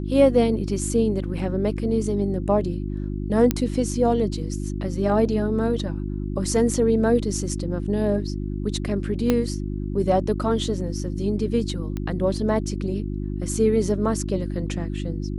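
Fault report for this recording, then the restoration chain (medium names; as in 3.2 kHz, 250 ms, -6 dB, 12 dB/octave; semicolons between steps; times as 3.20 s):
hum 50 Hz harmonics 7 -28 dBFS
3.51 s: pop -6 dBFS
9.30 s: pop -7 dBFS
11.97 s: pop -17 dBFS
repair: de-click; de-hum 50 Hz, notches 7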